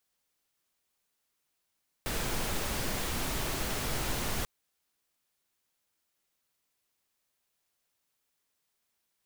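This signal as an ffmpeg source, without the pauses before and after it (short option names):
-f lavfi -i "anoisesrc=c=pink:a=0.122:d=2.39:r=44100:seed=1"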